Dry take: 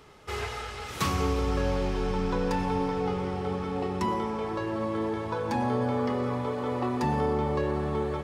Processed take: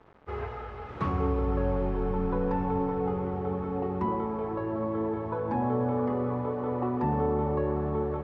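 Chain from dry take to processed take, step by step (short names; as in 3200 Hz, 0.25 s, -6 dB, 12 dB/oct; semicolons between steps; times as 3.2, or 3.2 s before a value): bit-crush 8-bit; LPF 1200 Hz 12 dB/oct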